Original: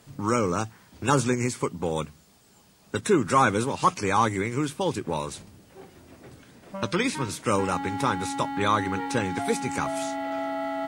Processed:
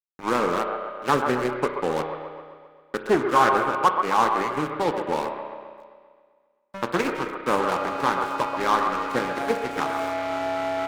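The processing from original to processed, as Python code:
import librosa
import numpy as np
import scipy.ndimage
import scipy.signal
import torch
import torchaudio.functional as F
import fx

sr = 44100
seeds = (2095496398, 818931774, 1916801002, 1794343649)

p1 = scipy.signal.medfilt(x, 15)
p2 = scipy.signal.sosfilt(scipy.signal.butter(4, 110.0, 'highpass', fs=sr, output='sos'), p1)
p3 = fx.bass_treble(p2, sr, bass_db=-12, treble_db=-2)
p4 = fx.rider(p3, sr, range_db=4, speed_s=0.5)
p5 = p3 + F.gain(torch.from_numpy(p4), -2.5).numpy()
p6 = np.sign(p5) * np.maximum(np.abs(p5) - 10.0 ** (-31.5 / 20.0), 0.0)
p7 = p6 + fx.echo_wet_bandpass(p6, sr, ms=132, feedback_pct=59, hz=880.0, wet_db=-5.0, dry=0)
p8 = fx.rev_spring(p7, sr, rt60_s=1.7, pass_ms=(32,), chirp_ms=25, drr_db=7.0)
y = fx.doppler_dist(p8, sr, depth_ms=0.28)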